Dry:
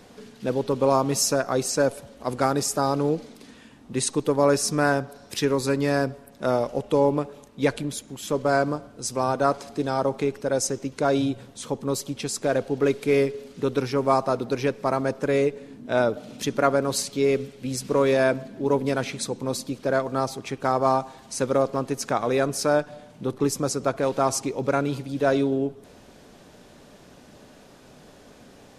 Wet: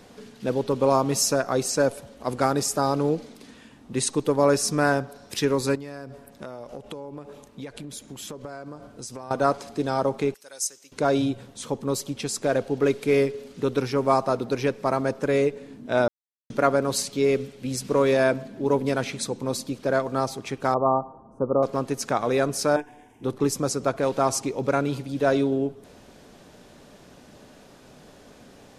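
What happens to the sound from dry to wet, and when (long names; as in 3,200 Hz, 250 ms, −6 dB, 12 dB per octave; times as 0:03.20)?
0:05.75–0:09.31: downward compressor 10 to 1, threshold −33 dBFS
0:10.34–0:10.92: first difference
0:16.08–0:16.50: silence
0:20.74–0:21.63: elliptic low-pass filter 1,200 Hz
0:22.76–0:23.24: phaser with its sweep stopped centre 860 Hz, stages 8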